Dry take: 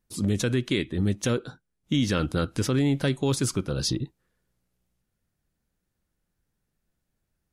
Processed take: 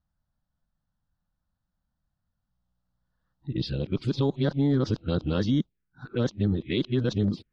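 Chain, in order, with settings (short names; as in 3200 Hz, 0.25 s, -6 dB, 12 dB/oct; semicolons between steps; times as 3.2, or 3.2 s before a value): whole clip reversed; LPF 4400 Hz 24 dB/oct; envelope phaser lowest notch 400 Hz, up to 2600 Hz, full sweep at -20 dBFS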